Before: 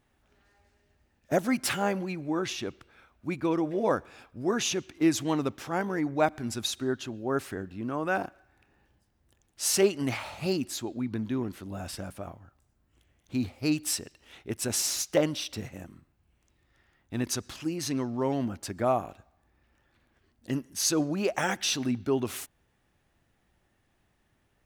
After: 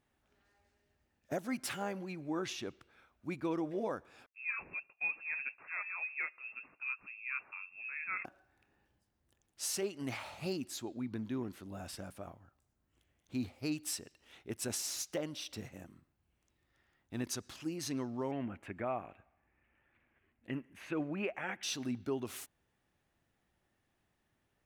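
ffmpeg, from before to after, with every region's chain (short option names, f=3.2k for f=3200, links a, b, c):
-filter_complex "[0:a]asettb=1/sr,asplit=3[a][b][c];[a]atrim=end=4.264[d];[b]atrim=start=4.26:end=8.25,asetpts=PTS-STARTPTS,afade=t=in:d=0.004:c=qsin,afade=t=out:st=3.986:d=0.004:c=qsin,agate=range=-33dB:threshold=-45dB:ratio=3:release=100:detection=peak,flanger=delay=2.2:depth=9.4:regen=-63:speed=1.9:shape=triangular,lowpass=f=2.4k:t=q:w=0.5098,lowpass=f=2.4k:t=q:w=0.6013,lowpass=f=2.4k:t=q:w=0.9,lowpass=f=2.4k:t=q:w=2.563,afreqshift=-2800[e];[c]atrim=start=8.246[f];[d][e]acrossfade=d=0.004:c1=hsin:c2=qsin[g];[g][f]acrossfade=d=0.004:c1=qsin:c2=hsin,asettb=1/sr,asplit=3[h][i][j];[h]atrim=end=18.314[k];[i]atrim=start=18.31:end=21.63,asetpts=PTS-STARTPTS,afade=t=in:d=0.004:c=qsin,afade=t=out:st=3.316:d=0.004:c=qsin,acrossover=split=3200[l][m];[m]acompressor=threshold=-37dB:ratio=4:attack=1:release=60[n];[l][n]amix=inputs=2:normalize=0,highshelf=f=3.5k:t=q:w=3:g=-13.5[o];[j]atrim=start=21.626[p];[k][o]acrossfade=d=0.004:c1=hsin:c2=qsin[q];[q][p]acrossfade=d=0.004:c1=qsin:c2=hsin,lowshelf=f=71:g=-6.5,alimiter=limit=-19.5dB:level=0:latency=1:release=359,volume=-7dB"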